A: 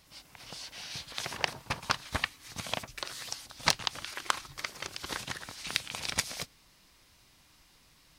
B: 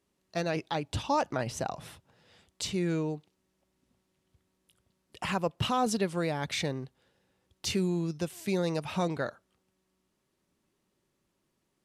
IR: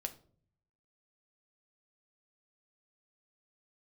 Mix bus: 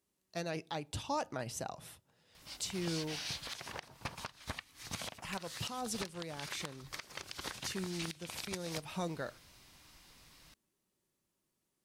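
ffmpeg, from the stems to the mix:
-filter_complex "[0:a]acompressor=threshold=0.0158:ratio=6,adelay=2350,volume=1.19[s0];[1:a]highshelf=f=6100:g=11,volume=0.316,asplit=2[s1][s2];[s2]volume=0.282[s3];[2:a]atrim=start_sample=2205[s4];[s3][s4]afir=irnorm=-1:irlink=0[s5];[s0][s1][s5]amix=inputs=3:normalize=0,alimiter=level_in=1.19:limit=0.0631:level=0:latency=1:release=461,volume=0.841"

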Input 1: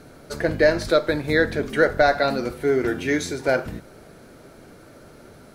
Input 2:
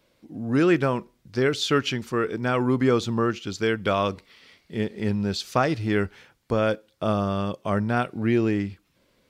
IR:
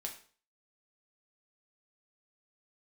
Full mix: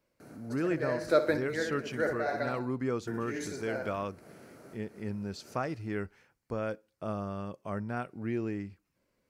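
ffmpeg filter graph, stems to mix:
-filter_complex "[0:a]highpass=110,adelay=200,volume=0.531,asplit=3[s0][s1][s2];[s0]atrim=end=2.53,asetpts=PTS-STARTPTS,afade=t=out:st=2.526:d=0.004:c=hsin[s3];[s1]atrim=start=2.53:end=3.07,asetpts=PTS-STARTPTS,volume=0[s4];[s2]atrim=start=3.07,asetpts=PTS-STARTPTS,afade=t=in:d=0.004:c=hsin[s5];[s3][s4][s5]concat=n=3:v=0:a=1,asplit=2[s6][s7];[s7]volume=0.2[s8];[1:a]volume=0.266,asplit=2[s9][s10];[s10]apad=whole_len=253498[s11];[s6][s11]sidechaincompress=threshold=0.00447:ratio=4:attack=9.7:release=173[s12];[s8]aecho=0:1:64|128|192|256|320|384:1|0.41|0.168|0.0689|0.0283|0.0116[s13];[s12][s9][s13]amix=inputs=3:normalize=0,equalizer=f=3500:w=2.7:g=-10.5"

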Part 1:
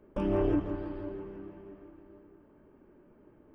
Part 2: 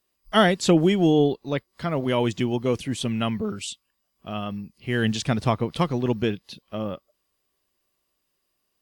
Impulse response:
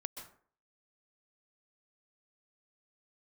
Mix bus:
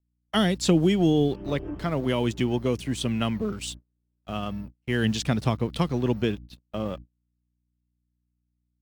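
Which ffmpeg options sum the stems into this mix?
-filter_complex "[0:a]adelay=1150,volume=0.562[s0];[1:a]aeval=exprs='sgn(val(0))*max(abs(val(0))-0.00422,0)':c=same,aeval=exprs='val(0)+0.00794*(sin(2*PI*60*n/s)+sin(2*PI*2*60*n/s)/2+sin(2*PI*3*60*n/s)/3+sin(2*PI*4*60*n/s)/4+sin(2*PI*5*60*n/s)/5)':c=same,volume=1,asplit=2[s1][s2];[s2]apad=whole_len=207060[s3];[s0][s3]sidechaincompress=threshold=0.0398:ratio=5:attack=16:release=305[s4];[s4][s1]amix=inputs=2:normalize=0,agate=range=0.0224:threshold=0.0126:ratio=16:detection=peak,acrossover=split=330|3000[s5][s6][s7];[s6]acompressor=threshold=0.0501:ratio=6[s8];[s5][s8][s7]amix=inputs=3:normalize=0"

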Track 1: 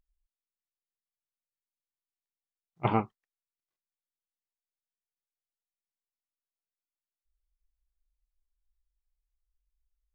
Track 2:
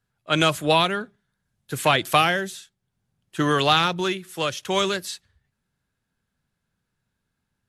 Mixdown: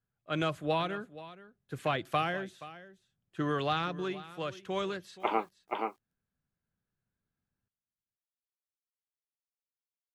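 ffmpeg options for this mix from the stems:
-filter_complex "[0:a]highpass=f=310:w=0.5412,highpass=f=310:w=1.3066,aemphasis=mode=production:type=cd,acrusher=bits=10:mix=0:aa=0.000001,adelay=2400,volume=0.891,asplit=2[s0][s1];[s1]volume=0.631[s2];[1:a]lowpass=f=1500:p=1,bandreject=f=910:w=12,volume=0.335,asplit=2[s3][s4];[s4]volume=0.15[s5];[s2][s5]amix=inputs=2:normalize=0,aecho=0:1:476:1[s6];[s0][s3][s6]amix=inputs=3:normalize=0"

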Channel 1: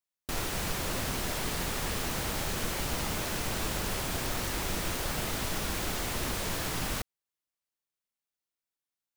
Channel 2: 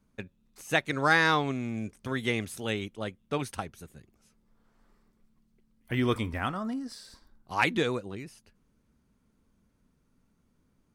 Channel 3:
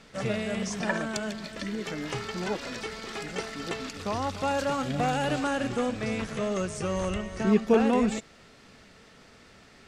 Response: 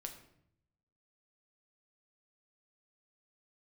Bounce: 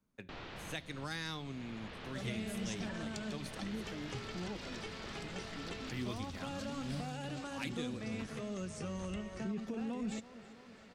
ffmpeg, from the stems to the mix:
-filter_complex "[0:a]lowpass=f=3800:w=0.5412,lowpass=f=3800:w=1.3066,volume=0.251,asplit=2[s0][s1];[s1]volume=0.335[s2];[1:a]volume=0.282,asplit=3[s3][s4][s5];[s4]volume=0.473[s6];[2:a]highshelf=f=4900:g=-8,alimiter=limit=0.0708:level=0:latency=1:release=17,flanger=delay=2.5:depth=3.4:regen=-75:speed=0.47:shape=triangular,adelay=2000,volume=0.944,asplit=2[s7][s8];[s8]volume=0.0944[s9];[s5]apad=whole_len=404043[s10];[s0][s10]sidechaincompress=threshold=0.0112:ratio=8:attack=42:release=973[s11];[3:a]atrim=start_sample=2205[s12];[s2][s6]amix=inputs=2:normalize=0[s13];[s13][s12]afir=irnorm=-1:irlink=0[s14];[s9]aecho=0:1:329|658|987|1316|1645|1974|2303|2632|2961:1|0.59|0.348|0.205|0.121|0.0715|0.0422|0.0249|0.0147[s15];[s11][s3][s7][s14][s15]amix=inputs=5:normalize=0,lowshelf=f=72:g=-9.5,acrossover=split=250|3000[s16][s17][s18];[s17]acompressor=threshold=0.00501:ratio=4[s19];[s16][s19][s18]amix=inputs=3:normalize=0"

